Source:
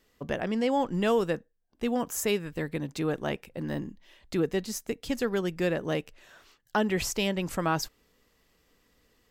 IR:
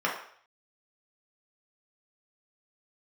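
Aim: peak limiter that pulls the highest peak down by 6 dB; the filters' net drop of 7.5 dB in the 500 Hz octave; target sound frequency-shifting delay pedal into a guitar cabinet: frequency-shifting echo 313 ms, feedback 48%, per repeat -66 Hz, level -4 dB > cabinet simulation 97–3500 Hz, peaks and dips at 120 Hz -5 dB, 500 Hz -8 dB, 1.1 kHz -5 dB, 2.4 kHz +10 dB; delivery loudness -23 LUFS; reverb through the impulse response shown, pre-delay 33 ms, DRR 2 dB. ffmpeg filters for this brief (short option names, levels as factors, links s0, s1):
-filter_complex "[0:a]equalizer=f=500:t=o:g=-5,alimiter=limit=0.0891:level=0:latency=1,asplit=2[s0][s1];[1:a]atrim=start_sample=2205,adelay=33[s2];[s1][s2]afir=irnorm=-1:irlink=0,volume=0.2[s3];[s0][s3]amix=inputs=2:normalize=0,asplit=7[s4][s5][s6][s7][s8][s9][s10];[s5]adelay=313,afreqshift=-66,volume=0.631[s11];[s6]adelay=626,afreqshift=-132,volume=0.302[s12];[s7]adelay=939,afreqshift=-198,volume=0.145[s13];[s8]adelay=1252,afreqshift=-264,volume=0.07[s14];[s9]adelay=1565,afreqshift=-330,volume=0.0335[s15];[s10]adelay=1878,afreqshift=-396,volume=0.016[s16];[s4][s11][s12][s13][s14][s15][s16]amix=inputs=7:normalize=0,highpass=97,equalizer=f=120:t=q:w=4:g=-5,equalizer=f=500:t=q:w=4:g=-8,equalizer=f=1100:t=q:w=4:g=-5,equalizer=f=2400:t=q:w=4:g=10,lowpass=f=3500:w=0.5412,lowpass=f=3500:w=1.3066,volume=2.66"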